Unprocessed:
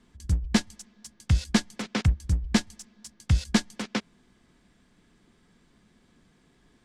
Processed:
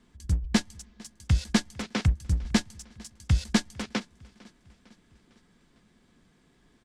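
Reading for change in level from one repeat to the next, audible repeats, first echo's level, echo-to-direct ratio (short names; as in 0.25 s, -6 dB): -5.0 dB, 3, -24.0 dB, -22.5 dB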